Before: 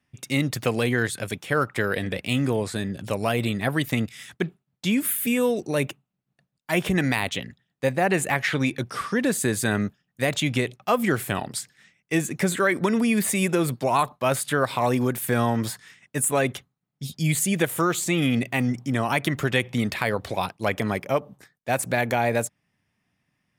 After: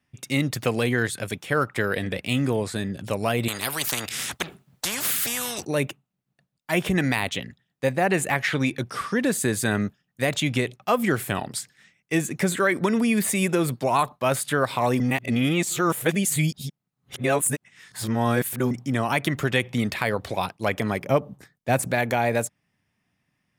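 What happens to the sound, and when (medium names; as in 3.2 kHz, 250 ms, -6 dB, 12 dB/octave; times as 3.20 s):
3.48–5.65 s: spectrum-flattening compressor 4:1
15.00–18.71 s: reverse
21.00–21.88 s: bass shelf 370 Hz +7.5 dB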